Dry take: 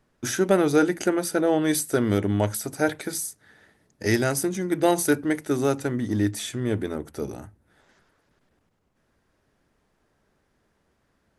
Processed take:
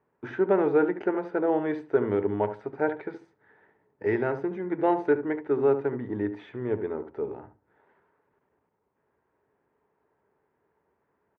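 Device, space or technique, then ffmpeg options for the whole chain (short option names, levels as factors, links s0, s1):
bass cabinet: -filter_complex "[0:a]highpass=72,equalizer=f=220:t=q:w=4:g=-3,equalizer=f=420:t=q:w=4:g=10,equalizer=f=920:t=q:w=4:g=10,lowpass=f=2300:w=0.5412,lowpass=f=2300:w=1.3066,lowshelf=f=110:g=-6,asplit=2[s0][s1];[s1]adelay=72,lowpass=f=1400:p=1,volume=0.316,asplit=2[s2][s3];[s3]adelay=72,lowpass=f=1400:p=1,volume=0.18,asplit=2[s4][s5];[s5]adelay=72,lowpass=f=1400:p=1,volume=0.18[s6];[s0][s2][s4][s6]amix=inputs=4:normalize=0,volume=0.473"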